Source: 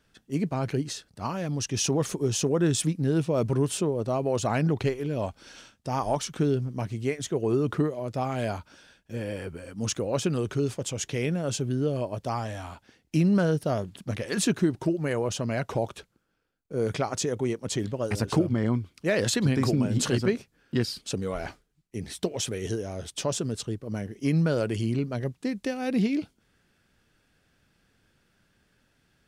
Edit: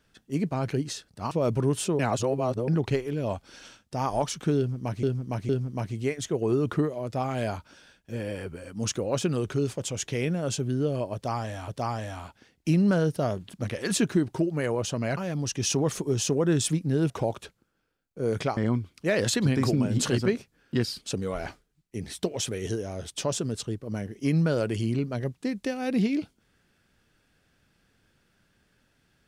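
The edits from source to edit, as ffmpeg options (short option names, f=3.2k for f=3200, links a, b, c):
-filter_complex "[0:a]asplit=10[a][b][c][d][e][f][g][h][i][j];[a]atrim=end=1.312[k];[b]atrim=start=3.238:end=3.922[l];[c]atrim=start=3.918:end=4.612,asetpts=PTS-STARTPTS,areverse[m];[d]atrim=start=4.608:end=6.962[n];[e]atrim=start=6.498:end=6.962[o];[f]atrim=start=6.498:end=12.692[p];[g]atrim=start=12.148:end=15.642[q];[h]atrim=start=1.308:end=3.242[r];[i]atrim=start=15.638:end=17.112[s];[j]atrim=start=18.568[t];[k][l]acrossfade=d=0.004:c1=hsin:c2=hsin[u];[u][m]acrossfade=d=0.004:c1=hsin:c2=hsin[v];[v][n]acrossfade=d=0.004:c1=hsin:c2=hsin[w];[w][o]acrossfade=d=0.004:c1=hsin:c2=hsin[x];[x][p]acrossfade=d=0.004:c1=hsin:c2=hsin[y];[y][q]acrossfade=d=0.004:c1=hsin:c2=hsin[z];[z][r]acrossfade=d=0.004:c1=hsin:c2=hsin[aa];[aa][s]acrossfade=d=0.004:c1=hsin:c2=hsin[ab];[ab][t]acrossfade=d=0.004:c1=hsin:c2=hsin"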